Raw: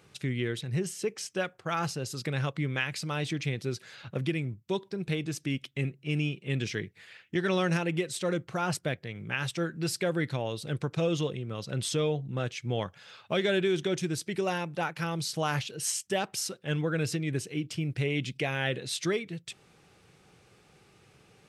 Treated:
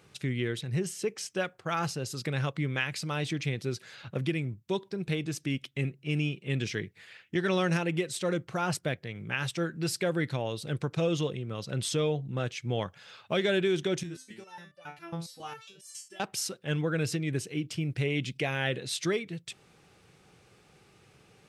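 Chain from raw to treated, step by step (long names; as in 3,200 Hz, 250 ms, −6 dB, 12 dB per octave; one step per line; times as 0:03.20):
0:14.03–0:16.20: step-sequenced resonator 7.3 Hz 84–590 Hz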